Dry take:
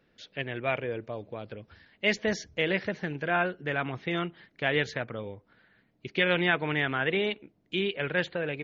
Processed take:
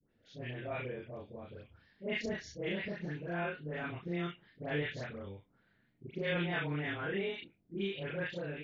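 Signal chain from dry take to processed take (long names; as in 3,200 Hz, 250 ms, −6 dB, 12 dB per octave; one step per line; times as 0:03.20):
every overlapping window played backwards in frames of 81 ms
low-shelf EQ 320 Hz +7.5 dB
all-pass dispersion highs, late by 104 ms, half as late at 1,200 Hz
level −8 dB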